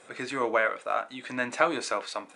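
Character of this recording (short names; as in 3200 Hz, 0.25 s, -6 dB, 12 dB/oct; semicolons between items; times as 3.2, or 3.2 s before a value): noise floor -53 dBFS; spectral tilt -3.0 dB/oct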